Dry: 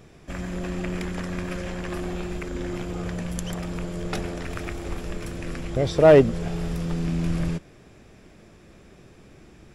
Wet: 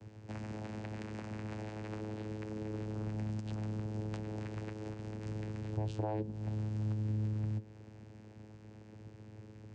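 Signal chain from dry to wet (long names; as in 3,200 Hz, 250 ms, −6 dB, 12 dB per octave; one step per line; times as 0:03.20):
high-shelf EQ 3,700 Hz +8 dB
mains-hum notches 60/120/180/240/300/360/420 Hz
downward compressor 6 to 1, threshold −33 dBFS, peak gain reduction 21.5 dB
channel vocoder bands 8, saw 107 Hz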